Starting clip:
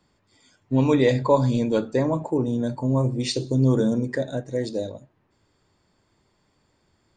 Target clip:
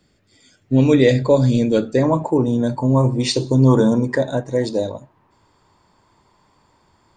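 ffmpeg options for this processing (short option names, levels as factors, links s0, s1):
-af "asetnsamples=n=441:p=0,asendcmd='2.03 equalizer g 3.5;3.03 equalizer g 11',equalizer=f=970:w=2.6:g=-12,volume=2"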